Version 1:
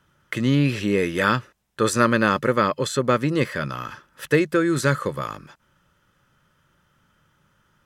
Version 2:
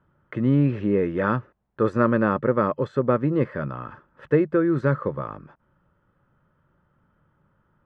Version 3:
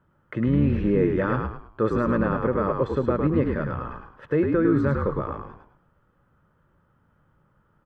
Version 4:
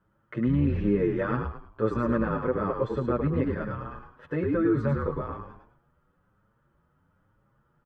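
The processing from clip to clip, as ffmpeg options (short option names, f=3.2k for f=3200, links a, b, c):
-af "lowpass=1.1k"
-filter_complex "[0:a]alimiter=limit=-13dB:level=0:latency=1:release=54,asplit=5[a][b][c][d][e];[b]adelay=105,afreqshift=-55,volume=-4dB[f];[c]adelay=210,afreqshift=-110,volume=-13.1dB[g];[d]adelay=315,afreqshift=-165,volume=-22.2dB[h];[e]adelay=420,afreqshift=-220,volume=-31.4dB[i];[a][f][g][h][i]amix=inputs=5:normalize=0"
-filter_complex "[0:a]asplit=2[a][b];[b]adelay=7.2,afreqshift=1.1[c];[a][c]amix=inputs=2:normalize=1,volume=-1dB"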